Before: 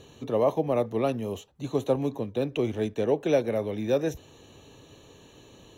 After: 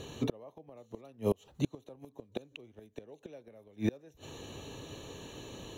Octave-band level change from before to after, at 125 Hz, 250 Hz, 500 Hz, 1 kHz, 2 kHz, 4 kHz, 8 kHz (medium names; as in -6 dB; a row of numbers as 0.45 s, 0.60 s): -7.5 dB, -8.5 dB, -14.5 dB, -15.5 dB, -10.0 dB, -5.0 dB, no reading